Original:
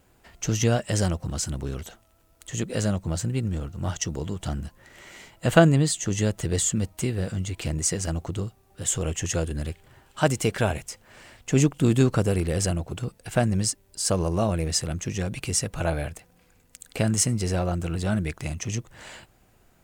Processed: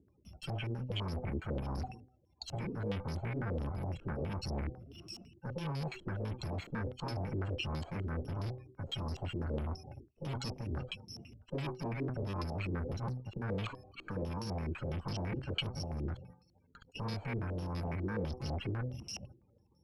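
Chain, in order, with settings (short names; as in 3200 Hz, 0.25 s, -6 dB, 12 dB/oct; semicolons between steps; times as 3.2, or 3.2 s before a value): FFT order left unsorted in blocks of 64 samples; HPF 60 Hz 24 dB/oct; gate -55 dBFS, range -13 dB; de-hum 126.2 Hz, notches 6; reverse; compressor 20:1, threshold -31 dBFS, peak gain reduction 22.5 dB; reverse; loudest bins only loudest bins 64; tube stage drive 45 dB, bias 0.4; stepped low-pass 12 Hz 360–4600 Hz; gain +10 dB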